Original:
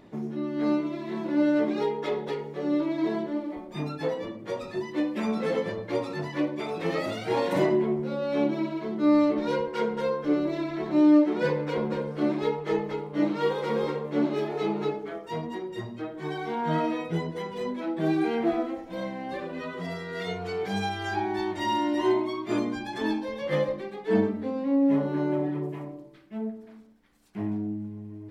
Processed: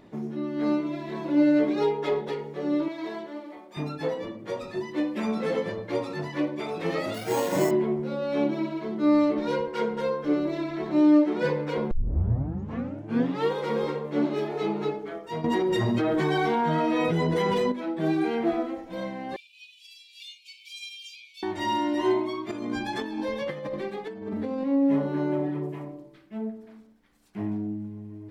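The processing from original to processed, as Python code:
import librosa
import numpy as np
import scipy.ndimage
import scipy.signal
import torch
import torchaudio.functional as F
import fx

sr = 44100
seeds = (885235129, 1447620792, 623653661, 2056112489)

y = fx.comb(x, sr, ms=7.2, depth=0.58, at=(0.88, 2.21))
y = fx.highpass(y, sr, hz=780.0, slope=6, at=(2.88, 3.77))
y = fx.resample_bad(y, sr, factor=6, down='none', up='hold', at=(7.14, 7.71))
y = fx.env_flatten(y, sr, amount_pct=100, at=(15.44, 17.72))
y = fx.cheby1_highpass(y, sr, hz=2300.0, order=10, at=(19.36, 21.43))
y = fx.over_compress(y, sr, threshold_db=-32.0, ratio=-1.0, at=(22.51, 24.64))
y = fx.edit(y, sr, fx.tape_start(start_s=11.91, length_s=1.58), tone=tone)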